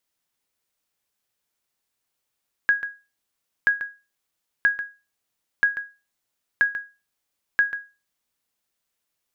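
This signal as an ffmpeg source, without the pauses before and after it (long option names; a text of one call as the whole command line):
ffmpeg -f lavfi -i "aevalsrc='0.299*(sin(2*PI*1650*mod(t,0.98))*exp(-6.91*mod(t,0.98)/0.29)+0.237*sin(2*PI*1650*max(mod(t,0.98)-0.14,0))*exp(-6.91*max(mod(t,0.98)-0.14,0)/0.29))':duration=5.88:sample_rate=44100" out.wav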